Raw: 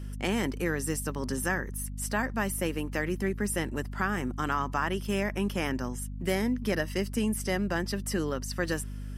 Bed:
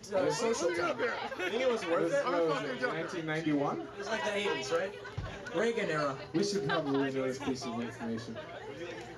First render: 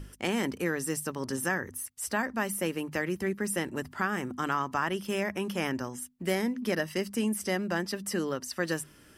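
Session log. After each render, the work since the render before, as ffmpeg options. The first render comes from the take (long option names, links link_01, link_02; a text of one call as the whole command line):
ffmpeg -i in.wav -af "bandreject=frequency=50:width_type=h:width=6,bandreject=frequency=100:width_type=h:width=6,bandreject=frequency=150:width_type=h:width=6,bandreject=frequency=200:width_type=h:width=6,bandreject=frequency=250:width_type=h:width=6" out.wav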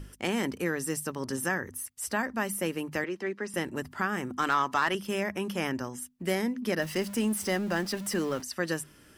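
ffmpeg -i in.wav -filter_complex "[0:a]asettb=1/sr,asplit=3[link_01][link_02][link_03];[link_01]atrim=end=3.044[link_04];[link_02]atrim=start=3.04:end=3.54,asetpts=PTS-STARTPTS,afade=type=in:duration=0.004:curve=qsin,afade=type=out:start_time=0.496:duration=0.004:curve=qsin,acrossover=split=240 6200:gain=0.0708 1 0.0631[link_05][link_06][link_07];[link_05][link_06][link_07]amix=inputs=3:normalize=0[link_08];[link_03]atrim=start=3.536[link_09];[link_04][link_08]acrossfade=duration=0.004:curve1=hsin:curve2=qsin[link_10];[link_10][link_09]acrossfade=duration=0.004:curve1=qsin:curve2=hsin,asettb=1/sr,asplit=3[link_11][link_12][link_13];[link_11]atrim=end=4.374[link_14];[link_12]atrim=start=4.37:end=4.95,asetpts=PTS-STARTPTS,afade=type=in:duration=0.004:curve=qsin,afade=type=out:start_time=0.576:duration=0.004:curve=qsin,asplit=2[link_15][link_16];[link_16]highpass=frequency=720:poles=1,volume=12dB,asoftclip=type=tanh:threshold=-14.5dB[link_17];[link_15][link_17]amix=inputs=2:normalize=0,lowpass=frequency=7500:poles=1,volume=-6dB[link_18];[link_13]atrim=start=4.946[link_19];[link_14][link_18]acrossfade=duration=0.004:curve1=hsin:curve2=qsin[link_20];[link_20][link_19]acrossfade=duration=0.004:curve1=qsin:curve2=hsin,asettb=1/sr,asplit=3[link_21][link_22][link_23];[link_21]atrim=end=6.814[link_24];[link_22]atrim=start=6.81:end=8.42,asetpts=PTS-STARTPTS,afade=type=in:duration=0.004:curve=qsin,afade=type=out:start_time=1.606:duration=0.004:curve=qsin,aeval=exprs='val(0)+0.5*0.0112*sgn(val(0))':channel_layout=same[link_25];[link_23]atrim=start=8.416[link_26];[link_24][link_25]acrossfade=duration=0.004:curve1=hsin:curve2=qsin[link_27];[link_27][link_26]acrossfade=duration=0.004:curve1=qsin:curve2=hsin" out.wav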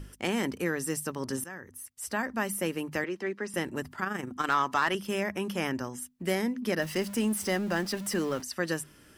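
ffmpeg -i in.wav -filter_complex "[0:a]asettb=1/sr,asplit=3[link_01][link_02][link_03];[link_01]atrim=end=3.954[link_04];[link_02]atrim=start=3.95:end=4.5,asetpts=PTS-STARTPTS,afade=type=in:duration=0.004:curve=qsin,afade=type=out:start_time=0.546:duration=0.004:curve=qsin,tremolo=f=24:d=0.571[link_05];[link_03]atrim=start=4.496[link_06];[link_04][link_05]acrossfade=duration=0.004:curve1=hsin:curve2=qsin[link_07];[link_07][link_06]acrossfade=duration=0.004:curve1=qsin:curve2=hsin,asplit=2[link_08][link_09];[link_08]atrim=end=1.44,asetpts=PTS-STARTPTS,afade=type=out:start_time=1.436:duration=0.004:curve=hsin:silence=0.149624[link_10];[link_09]atrim=start=1.44,asetpts=PTS-STARTPTS,afade=type=in:duration=0.9:silence=0.149624[link_11];[link_10][link_11]concat=n=2:v=0:a=1" out.wav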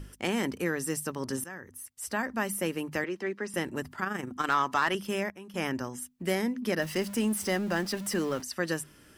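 ffmpeg -i in.wav -filter_complex "[0:a]asplit=3[link_01][link_02][link_03];[link_01]atrim=end=5.3,asetpts=PTS-STARTPTS,afade=type=out:start_time=5.03:duration=0.27:curve=log:silence=0.211349[link_04];[link_02]atrim=start=5.3:end=5.54,asetpts=PTS-STARTPTS,volume=-13.5dB[link_05];[link_03]atrim=start=5.54,asetpts=PTS-STARTPTS,afade=type=in:duration=0.27:curve=log:silence=0.211349[link_06];[link_04][link_05][link_06]concat=n=3:v=0:a=1" out.wav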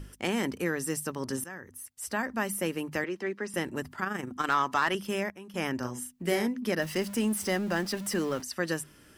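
ffmpeg -i in.wav -filter_complex "[0:a]asettb=1/sr,asplit=3[link_01][link_02][link_03];[link_01]atrim=end=5.784[link_04];[link_02]atrim=start=5.78:end=6.47,asetpts=PTS-STARTPTS,afade=type=in:duration=0.004:curve=qsin,afade=type=out:start_time=0.686:duration=0.004:curve=qsin,asplit=2[link_05][link_06];[link_06]adelay=40,volume=-5dB[link_07];[link_05][link_07]amix=inputs=2:normalize=0,atrim=end_sample=30429[link_08];[link_03]atrim=start=6.466[link_09];[link_04][link_08]acrossfade=duration=0.004:curve1=hsin:curve2=qsin[link_10];[link_10][link_09]acrossfade=duration=0.004:curve1=qsin:curve2=hsin" out.wav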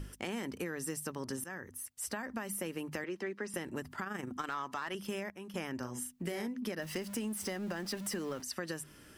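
ffmpeg -i in.wav -af "alimiter=limit=-20dB:level=0:latency=1:release=109,acompressor=threshold=-35dB:ratio=6" out.wav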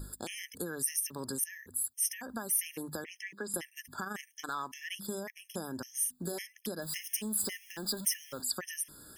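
ffmpeg -i in.wav -af "crystalizer=i=3:c=0,afftfilt=real='re*gt(sin(2*PI*1.8*pts/sr)*(1-2*mod(floor(b*sr/1024/1700),2)),0)':imag='im*gt(sin(2*PI*1.8*pts/sr)*(1-2*mod(floor(b*sr/1024/1700),2)),0)':win_size=1024:overlap=0.75" out.wav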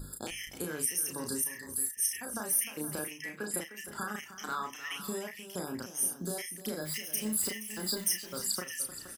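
ffmpeg -i in.wav -filter_complex "[0:a]asplit=2[link_01][link_02];[link_02]adelay=33,volume=-4dB[link_03];[link_01][link_03]amix=inputs=2:normalize=0,aecho=1:1:45|306|472:0.119|0.211|0.224" out.wav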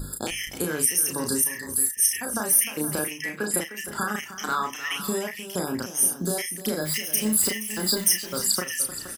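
ffmpeg -i in.wav -af "volume=9.5dB" out.wav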